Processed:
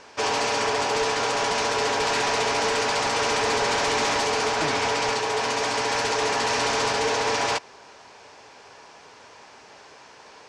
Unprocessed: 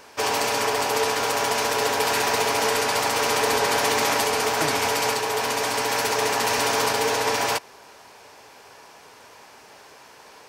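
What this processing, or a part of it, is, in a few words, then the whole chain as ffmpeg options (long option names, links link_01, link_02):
synthesiser wavefolder: -filter_complex "[0:a]asettb=1/sr,asplit=3[link_01][link_02][link_03];[link_01]atrim=end=4.554[link_04];[link_02]atrim=start=4.55:end=5.13,asetpts=PTS-STARTPTS,afade=type=in:duration=0.004:curve=qsin,afade=type=out:start_time=0.576:duration=0.004:curve=qsin,highshelf=frequency=8100:gain=-5.5[link_05];[link_03]atrim=start=5.126[link_06];[link_04][link_05]acrossfade=duration=0.004:curve1=hsin:curve2=qsin[link_07];[link_07][link_06]acrossfade=duration=0.004:curve1=qsin:curve2=hsin,aeval=exprs='0.141*(abs(mod(val(0)/0.141+3,4)-2)-1)':channel_layout=same,lowpass=frequency=7300:width=0.5412,lowpass=frequency=7300:width=1.3066"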